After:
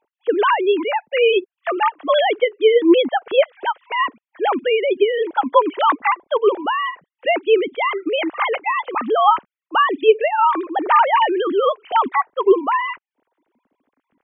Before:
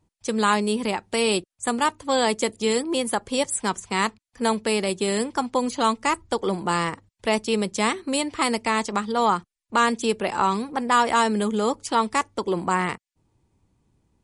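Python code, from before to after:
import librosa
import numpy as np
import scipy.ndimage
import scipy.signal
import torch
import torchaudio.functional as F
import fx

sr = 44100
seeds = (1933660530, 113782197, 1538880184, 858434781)

y = fx.sine_speech(x, sr)
y = y * librosa.db_to_amplitude(6.0)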